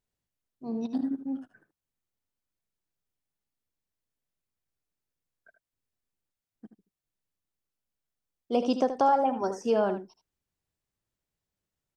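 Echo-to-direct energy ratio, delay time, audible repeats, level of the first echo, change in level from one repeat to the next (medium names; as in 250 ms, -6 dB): -10.5 dB, 78 ms, 1, -10.5 dB, no regular repeats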